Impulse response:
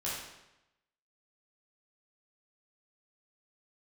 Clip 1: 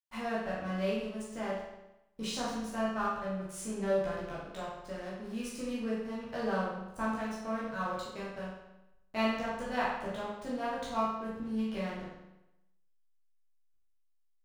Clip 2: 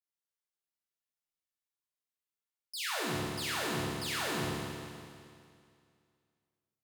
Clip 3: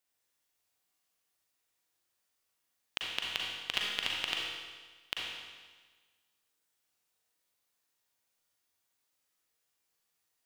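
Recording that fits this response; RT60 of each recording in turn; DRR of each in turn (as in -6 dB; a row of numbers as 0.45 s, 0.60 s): 1; 0.90 s, 2.3 s, 1.4 s; -8.5 dB, -5.5 dB, -3.0 dB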